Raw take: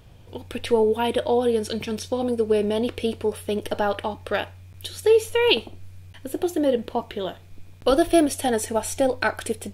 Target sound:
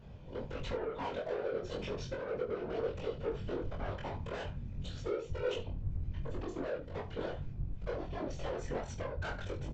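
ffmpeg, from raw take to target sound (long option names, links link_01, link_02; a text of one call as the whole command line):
ffmpeg -i in.wav -filter_complex "[0:a]lowpass=frequency=1900:poles=1,equalizer=frequency=520:width=6.6:gain=4.5,aecho=1:1:2:0.32,asubboost=boost=5.5:cutoff=67,acompressor=threshold=-25dB:ratio=16,aresample=16000,asoftclip=type=tanh:threshold=-31.5dB,aresample=44100,flanger=delay=18:depth=4.7:speed=0.39,afftfilt=real='hypot(re,im)*cos(2*PI*random(0))':imag='hypot(re,im)*sin(2*PI*random(1))':win_size=512:overlap=0.75,asplit=2[link_01][link_02];[link_02]aecho=0:1:22|72:0.708|0.211[link_03];[link_01][link_03]amix=inputs=2:normalize=0,volume=4.5dB" out.wav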